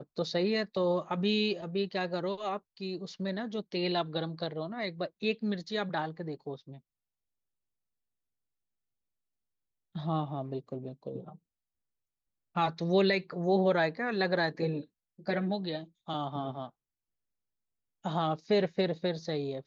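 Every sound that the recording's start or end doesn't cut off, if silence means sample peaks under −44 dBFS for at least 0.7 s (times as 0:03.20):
0:09.95–0:11.35
0:12.56–0:16.68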